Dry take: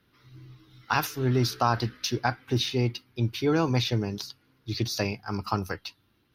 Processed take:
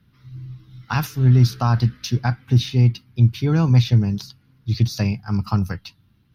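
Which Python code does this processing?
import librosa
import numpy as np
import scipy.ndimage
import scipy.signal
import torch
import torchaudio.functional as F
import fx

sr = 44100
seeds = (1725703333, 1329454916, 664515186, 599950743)

y = fx.low_shelf_res(x, sr, hz=250.0, db=11.0, q=1.5)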